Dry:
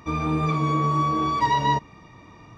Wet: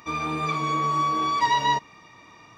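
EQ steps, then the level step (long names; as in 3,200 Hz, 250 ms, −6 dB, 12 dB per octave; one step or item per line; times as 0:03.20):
spectral tilt +3.5 dB per octave
high-shelf EQ 5,400 Hz −8 dB
0.0 dB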